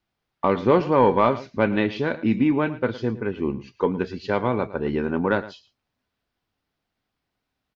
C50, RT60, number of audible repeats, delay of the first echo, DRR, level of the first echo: no reverb, no reverb, 1, 111 ms, no reverb, -16.5 dB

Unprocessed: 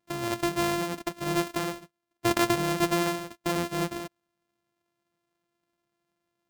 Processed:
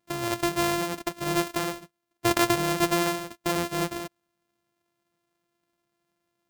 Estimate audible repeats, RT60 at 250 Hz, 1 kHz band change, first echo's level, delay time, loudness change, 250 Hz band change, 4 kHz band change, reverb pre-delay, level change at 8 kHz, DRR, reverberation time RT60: no echo, no reverb, +2.0 dB, no echo, no echo, +1.5 dB, +0.5 dB, +2.5 dB, no reverb, +3.5 dB, no reverb, no reverb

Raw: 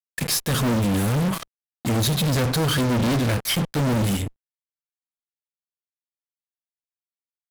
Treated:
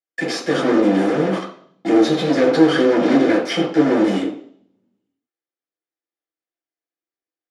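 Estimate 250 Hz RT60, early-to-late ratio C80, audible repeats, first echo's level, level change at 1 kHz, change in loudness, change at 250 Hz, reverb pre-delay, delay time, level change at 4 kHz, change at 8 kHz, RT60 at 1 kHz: 0.60 s, 11.0 dB, no echo, no echo, +5.0 dB, +5.0 dB, +8.0 dB, 3 ms, no echo, -1.0 dB, no reading, 0.55 s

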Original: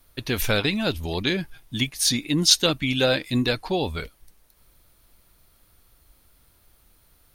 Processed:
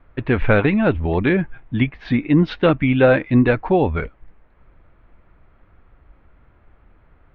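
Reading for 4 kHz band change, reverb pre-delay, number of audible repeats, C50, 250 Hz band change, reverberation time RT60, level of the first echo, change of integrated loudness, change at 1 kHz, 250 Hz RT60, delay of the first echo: -13.5 dB, no reverb, no echo, no reverb, +8.5 dB, no reverb, no echo, +4.5 dB, +8.0 dB, no reverb, no echo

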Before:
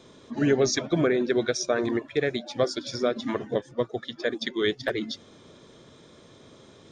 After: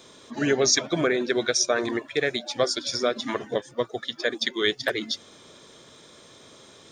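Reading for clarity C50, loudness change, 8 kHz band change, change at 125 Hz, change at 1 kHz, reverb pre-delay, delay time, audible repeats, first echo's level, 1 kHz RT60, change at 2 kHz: no reverb, +1.5 dB, +8.5 dB, -4.0 dB, +3.0 dB, no reverb, no echo, no echo, no echo, no reverb, +4.5 dB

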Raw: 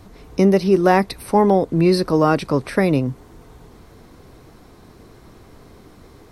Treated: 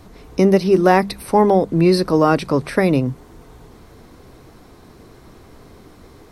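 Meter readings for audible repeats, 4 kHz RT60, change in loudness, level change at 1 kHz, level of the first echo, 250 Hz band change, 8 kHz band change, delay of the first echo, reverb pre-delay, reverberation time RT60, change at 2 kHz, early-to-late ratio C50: no echo, no reverb, +1.5 dB, +1.5 dB, no echo, +1.0 dB, +1.5 dB, no echo, no reverb, no reverb, +1.5 dB, no reverb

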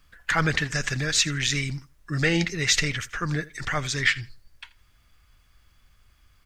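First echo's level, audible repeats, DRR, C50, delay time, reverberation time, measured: -20.5 dB, 1, no reverb, no reverb, 82 ms, no reverb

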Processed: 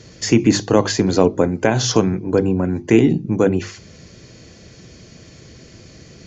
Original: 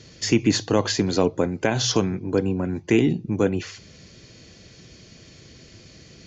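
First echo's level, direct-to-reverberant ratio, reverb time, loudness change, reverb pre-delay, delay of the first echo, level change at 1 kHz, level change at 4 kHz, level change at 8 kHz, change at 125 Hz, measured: no echo, no reverb, no reverb, +5.5 dB, no reverb, no echo, +6.0 dB, +1.5 dB, no reading, +5.5 dB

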